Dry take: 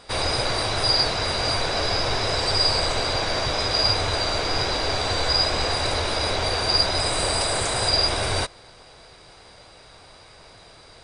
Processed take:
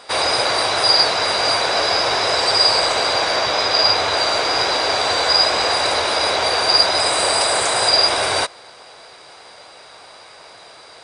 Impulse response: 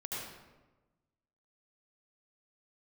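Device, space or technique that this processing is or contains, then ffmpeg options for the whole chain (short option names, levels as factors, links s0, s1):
filter by subtraction: -filter_complex "[0:a]asettb=1/sr,asplit=3[s0][s1][s2];[s0]atrim=end=3.364[s3];[s1]atrim=start=3.36:end=4.17,asetpts=PTS-STARTPTS,afade=t=in:d=0.004:c=qsin,afade=t=out:st=0.806:d=0.004:c=qsin,acrossover=split=7800[s4][s5];[s5]acompressor=threshold=0.00224:ratio=4:attack=1:release=60[s6];[s4][s6]amix=inputs=2:normalize=0[s7];[s2]atrim=start=4.166[s8];[s3][s7]acrossfade=d=0.004:c1=hsin:c2=qsin[s9];[s9][s8]acrossfade=d=0.004:c1=qsin:c2=hsin,asplit=2[s10][s11];[s11]lowpass=780,volume=-1[s12];[s10][s12]amix=inputs=2:normalize=0,volume=2"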